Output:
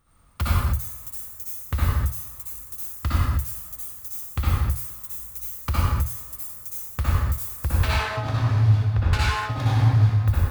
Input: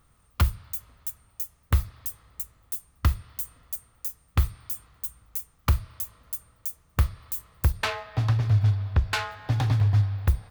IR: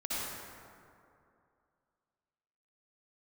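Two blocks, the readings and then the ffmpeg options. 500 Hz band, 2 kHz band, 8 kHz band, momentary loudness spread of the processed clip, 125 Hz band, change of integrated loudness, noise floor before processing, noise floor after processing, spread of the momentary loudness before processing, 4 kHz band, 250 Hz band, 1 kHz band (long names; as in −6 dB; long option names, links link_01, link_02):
+4.5 dB, +4.0 dB, +3.0 dB, 12 LU, +3.5 dB, +3.5 dB, −63 dBFS, −42 dBFS, 13 LU, +3.0 dB, +5.0 dB, +5.5 dB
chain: -filter_complex "[1:a]atrim=start_sample=2205,afade=type=out:start_time=0.37:duration=0.01,atrim=end_sample=16758[link_01];[0:a][link_01]afir=irnorm=-1:irlink=0"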